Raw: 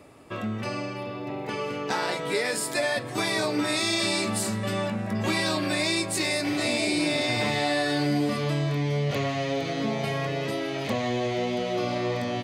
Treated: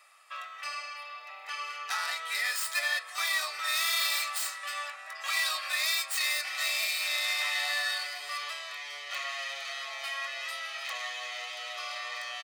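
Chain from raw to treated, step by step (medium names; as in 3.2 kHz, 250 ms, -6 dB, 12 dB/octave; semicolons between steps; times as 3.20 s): tracing distortion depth 0.085 ms; high-pass 1.1 kHz 24 dB/octave; comb 1.6 ms, depth 52%; trim -1.5 dB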